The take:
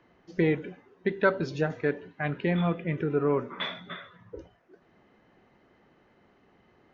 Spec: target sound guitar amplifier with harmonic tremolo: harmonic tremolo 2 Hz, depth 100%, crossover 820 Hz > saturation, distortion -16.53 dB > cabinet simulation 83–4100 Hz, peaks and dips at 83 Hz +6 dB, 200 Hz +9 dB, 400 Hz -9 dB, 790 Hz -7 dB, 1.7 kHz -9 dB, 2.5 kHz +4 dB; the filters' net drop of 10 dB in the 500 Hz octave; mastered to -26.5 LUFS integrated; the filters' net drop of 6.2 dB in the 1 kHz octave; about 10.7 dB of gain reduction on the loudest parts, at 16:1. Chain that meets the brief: peaking EQ 500 Hz -6 dB; peaking EQ 1 kHz -3 dB; compression 16:1, threshold -32 dBFS; harmonic tremolo 2 Hz, depth 100%, crossover 820 Hz; saturation -32 dBFS; cabinet simulation 83–4100 Hz, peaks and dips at 83 Hz +6 dB, 200 Hz +9 dB, 400 Hz -9 dB, 790 Hz -7 dB, 1.7 kHz -9 dB, 2.5 kHz +4 dB; trim +17 dB

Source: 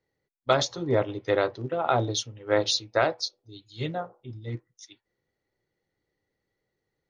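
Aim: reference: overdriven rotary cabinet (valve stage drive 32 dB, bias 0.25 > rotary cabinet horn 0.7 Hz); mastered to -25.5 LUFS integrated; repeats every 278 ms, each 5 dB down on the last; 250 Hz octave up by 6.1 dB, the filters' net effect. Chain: peaking EQ 250 Hz +8.5 dB; feedback delay 278 ms, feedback 56%, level -5 dB; valve stage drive 32 dB, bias 0.25; rotary cabinet horn 0.7 Hz; trim +11.5 dB

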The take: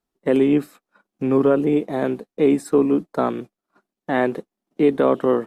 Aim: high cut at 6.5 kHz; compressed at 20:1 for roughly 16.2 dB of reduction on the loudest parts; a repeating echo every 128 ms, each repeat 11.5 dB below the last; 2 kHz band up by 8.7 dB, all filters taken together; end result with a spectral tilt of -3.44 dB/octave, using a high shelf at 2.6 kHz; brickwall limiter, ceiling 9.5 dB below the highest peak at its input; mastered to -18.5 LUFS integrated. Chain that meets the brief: low-pass 6.5 kHz; peaking EQ 2 kHz +8.5 dB; treble shelf 2.6 kHz +5 dB; compression 20:1, threshold -27 dBFS; peak limiter -24.5 dBFS; feedback delay 128 ms, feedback 27%, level -11.5 dB; trim +17.5 dB

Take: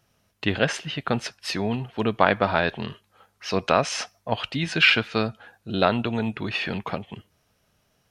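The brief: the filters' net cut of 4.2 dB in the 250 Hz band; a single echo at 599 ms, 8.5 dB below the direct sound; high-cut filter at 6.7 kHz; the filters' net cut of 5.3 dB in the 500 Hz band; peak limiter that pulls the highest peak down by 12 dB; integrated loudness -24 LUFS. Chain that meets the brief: low-pass 6.7 kHz; peaking EQ 250 Hz -4 dB; peaking EQ 500 Hz -6 dB; peak limiter -15 dBFS; delay 599 ms -8.5 dB; trim +6 dB

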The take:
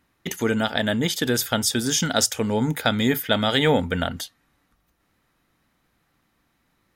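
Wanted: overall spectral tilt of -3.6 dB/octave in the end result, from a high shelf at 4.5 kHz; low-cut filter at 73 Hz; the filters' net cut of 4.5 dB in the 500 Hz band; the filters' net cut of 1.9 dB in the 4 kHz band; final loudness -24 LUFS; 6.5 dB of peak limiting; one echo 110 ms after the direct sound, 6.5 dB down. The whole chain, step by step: high-pass 73 Hz; peaking EQ 500 Hz -5.5 dB; peaking EQ 4 kHz -5 dB; treble shelf 4.5 kHz +5 dB; peak limiter -12 dBFS; delay 110 ms -6.5 dB

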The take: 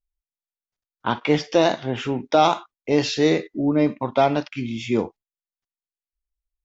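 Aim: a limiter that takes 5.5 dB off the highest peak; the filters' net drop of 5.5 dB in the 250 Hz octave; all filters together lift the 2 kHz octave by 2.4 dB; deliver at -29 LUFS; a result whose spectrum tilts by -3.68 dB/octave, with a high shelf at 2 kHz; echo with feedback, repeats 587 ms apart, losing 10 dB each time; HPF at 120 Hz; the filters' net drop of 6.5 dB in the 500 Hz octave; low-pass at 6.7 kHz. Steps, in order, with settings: high-pass 120 Hz; low-pass 6.7 kHz; peaking EQ 250 Hz -4 dB; peaking EQ 500 Hz -7.5 dB; treble shelf 2 kHz -5 dB; peaking EQ 2 kHz +6.5 dB; peak limiter -12.5 dBFS; feedback delay 587 ms, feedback 32%, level -10 dB; trim -1.5 dB

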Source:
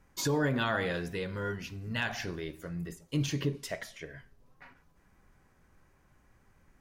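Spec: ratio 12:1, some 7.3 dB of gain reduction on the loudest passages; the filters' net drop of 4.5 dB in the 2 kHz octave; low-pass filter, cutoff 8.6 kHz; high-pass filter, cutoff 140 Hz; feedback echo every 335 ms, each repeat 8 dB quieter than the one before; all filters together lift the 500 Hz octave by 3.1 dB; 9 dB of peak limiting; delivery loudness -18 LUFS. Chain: high-pass 140 Hz; low-pass 8.6 kHz; peaking EQ 500 Hz +4 dB; peaking EQ 2 kHz -6.5 dB; compression 12:1, threshold -31 dBFS; peak limiter -31 dBFS; feedback delay 335 ms, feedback 40%, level -8 dB; trim +22.5 dB

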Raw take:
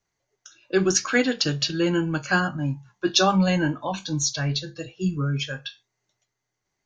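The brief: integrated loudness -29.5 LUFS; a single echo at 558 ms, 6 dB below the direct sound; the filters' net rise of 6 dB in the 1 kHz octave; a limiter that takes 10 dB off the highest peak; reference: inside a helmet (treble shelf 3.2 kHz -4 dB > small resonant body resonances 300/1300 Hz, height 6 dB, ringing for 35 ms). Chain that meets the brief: peaking EQ 1 kHz +8.5 dB; peak limiter -14.5 dBFS; treble shelf 3.2 kHz -4 dB; delay 558 ms -6 dB; small resonant body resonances 300/1300 Hz, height 6 dB, ringing for 35 ms; trim -5.5 dB

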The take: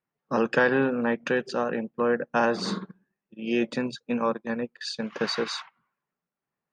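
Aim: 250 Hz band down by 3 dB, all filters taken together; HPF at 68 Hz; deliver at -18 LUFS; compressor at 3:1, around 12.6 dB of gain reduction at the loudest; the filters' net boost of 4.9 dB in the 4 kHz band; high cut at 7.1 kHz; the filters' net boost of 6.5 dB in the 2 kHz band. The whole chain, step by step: high-pass 68 Hz; low-pass 7.1 kHz; peaking EQ 250 Hz -3.5 dB; peaking EQ 2 kHz +8 dB; peaking EQ 4 kHz +4.5 dB; compression 3:1, threshold -30 dBFS; trim +14.5 dB

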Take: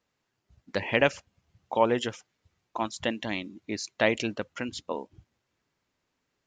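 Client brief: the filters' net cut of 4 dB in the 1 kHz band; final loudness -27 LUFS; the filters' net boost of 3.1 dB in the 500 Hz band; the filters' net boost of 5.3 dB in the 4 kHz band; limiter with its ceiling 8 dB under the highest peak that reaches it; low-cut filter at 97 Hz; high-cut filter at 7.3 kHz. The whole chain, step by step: high-pass 97 Hz; low-pass 7.3 kHz; peaking EQ 500 Hz +5.5 dB; peaking EQ 1 kHz -7.5 dB; peaking EQ 4 kHz +8 dB; trim +3.5 dB; peak limiter -10 dBFS

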